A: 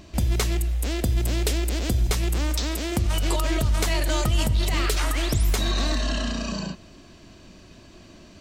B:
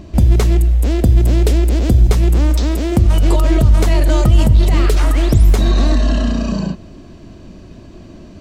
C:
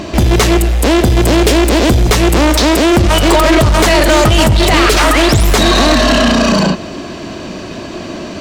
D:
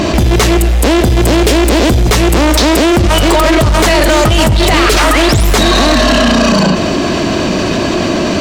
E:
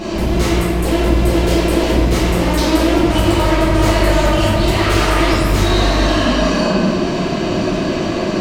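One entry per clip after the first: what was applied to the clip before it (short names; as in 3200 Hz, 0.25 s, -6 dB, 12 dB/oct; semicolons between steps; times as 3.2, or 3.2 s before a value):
tilt shelf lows +6.5 dB, about 940 Hz; gain +6 dB
overdrive pedal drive 28 dB, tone 6500 Hz, clips at -1 dBFS
fast leveller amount 70%; gain -1 dB
reverb RT60 2.1 s, pre-delay 5 ms, DRR -11 dB; gain -17.5 dB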